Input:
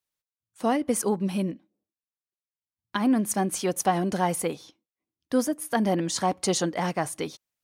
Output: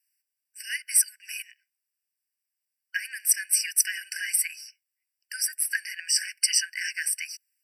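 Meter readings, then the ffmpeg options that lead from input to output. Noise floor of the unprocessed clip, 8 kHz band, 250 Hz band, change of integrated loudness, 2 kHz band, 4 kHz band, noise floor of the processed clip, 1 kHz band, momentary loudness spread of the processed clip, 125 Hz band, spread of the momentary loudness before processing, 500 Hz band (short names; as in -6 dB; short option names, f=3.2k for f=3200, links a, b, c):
under -85 dBFS, +8.5 dB, under -40 dB, +1.5 dB, +6.5 dB, +6.0 dB, under -85 dBFS, under -40 dB, 15 LU, under -40 dB, 8 LU, under -40 dB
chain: -af "aemphasis=mode=production:type=cd,afftfilt=real='re*eq(mod(floor(b*sr/1024/1500),2),1)':imag='im*eq(mod(floor(b*sr/1024/1500),2),1)':win_size=1024:overlap=0.75,volume=6dB"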